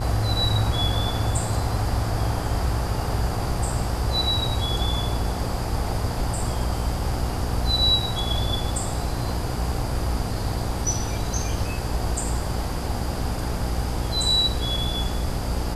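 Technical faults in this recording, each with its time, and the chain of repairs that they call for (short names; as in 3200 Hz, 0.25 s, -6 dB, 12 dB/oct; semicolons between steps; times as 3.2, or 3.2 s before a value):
buzz 60 Hz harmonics 16 -29 dBFS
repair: de-hum 60 Hz, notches 16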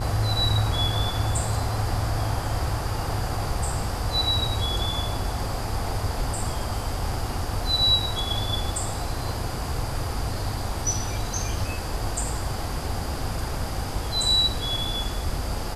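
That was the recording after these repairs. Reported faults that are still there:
none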